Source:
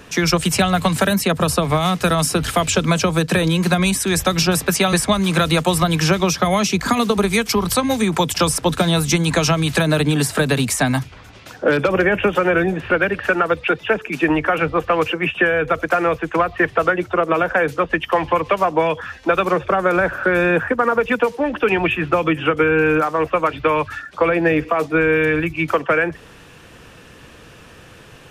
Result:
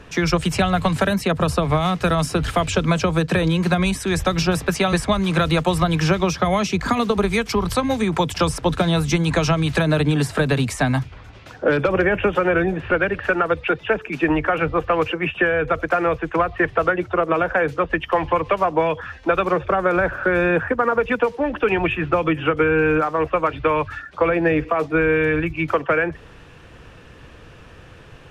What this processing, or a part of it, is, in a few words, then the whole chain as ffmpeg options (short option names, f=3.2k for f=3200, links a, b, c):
low shelf boost with a cut just above: -af "aemphasis=mode=reproduction:type=50kf,lowshelf=f=98:g=8,equalizer=f=210:t=o:w=0.79:g=-3,volume=-1.5dB"